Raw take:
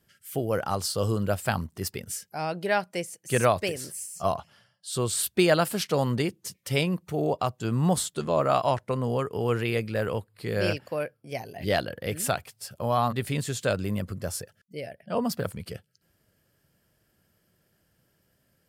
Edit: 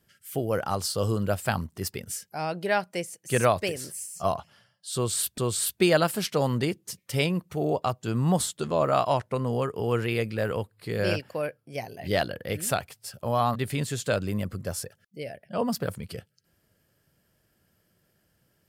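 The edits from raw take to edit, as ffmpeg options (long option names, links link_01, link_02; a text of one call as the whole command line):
ffmpeg -i in.wav -filter_complex "[0:a]asplit=2[link_01][link_02];[link_01]atrim=end=5.382[link_03];[link_02]atrim=start=4.948[link_04];[link_03][link_04]acrossfade=duration=0.004:curve1=hsin:curve2=hsin" out.wav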